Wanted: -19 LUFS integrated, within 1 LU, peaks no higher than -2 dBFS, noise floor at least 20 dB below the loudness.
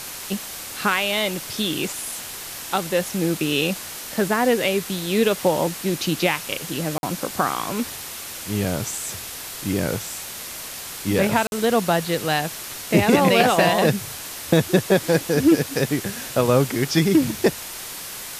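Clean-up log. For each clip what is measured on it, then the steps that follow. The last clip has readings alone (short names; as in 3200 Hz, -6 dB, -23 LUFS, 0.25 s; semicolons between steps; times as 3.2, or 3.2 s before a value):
dropouts 2; longest dropout 51 ms; noise floor -34 dBFS; noise floor target -42 dBFS; loudness -22.0 LUFS; peak -4.0 dBFS; loudness target -19.0 LUFS
-> interpolate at 6.98/11.47, 51 ms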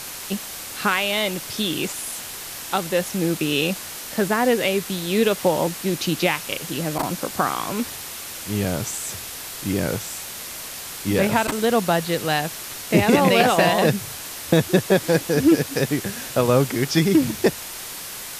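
dropouts 0; noise floor -34 dBFS; noise floor target -42 dBFS
-> denoiser 8 dB, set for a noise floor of -34 dBFS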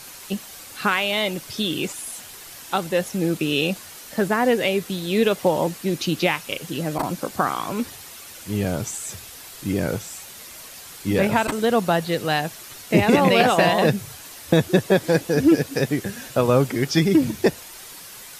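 noise floor -41 dBFS; noise floor target -42 dBFS
-> denoiser 6 dB, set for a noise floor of -41 dBFS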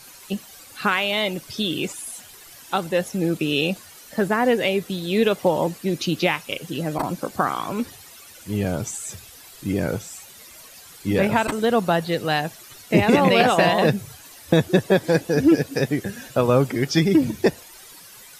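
noise floor -45 dBFS; loudness -22.0 LUFS; peak -4.0 dBFS; loudness target -19.0 LUFS
-> gain +3 dB; limiter -2 dBFS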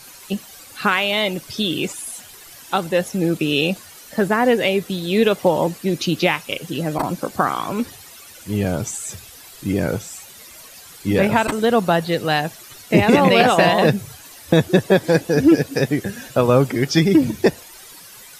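loudness -19.0 LUFS; peak -2.0 dBFS; noise floor -42 dBFS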